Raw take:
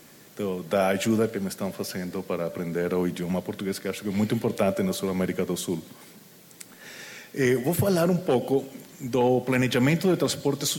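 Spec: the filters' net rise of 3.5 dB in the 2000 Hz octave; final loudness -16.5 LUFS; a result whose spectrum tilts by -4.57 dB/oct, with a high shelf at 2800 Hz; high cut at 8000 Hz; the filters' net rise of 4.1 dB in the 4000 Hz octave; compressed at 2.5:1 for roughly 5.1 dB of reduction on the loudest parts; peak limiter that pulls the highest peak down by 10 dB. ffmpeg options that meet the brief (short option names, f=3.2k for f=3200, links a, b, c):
-af "lowpass=8k,equalizer=f=2k:t=o:g=4.5,highshelf=f=2.8k:g=-6.5,equalizer=f=4k:t=o:g=9,acompressor=threshold=-25dB:ratio=2.5,volume=16.5dB,alimiter=limit=-6.5dB:level=0:latency=1"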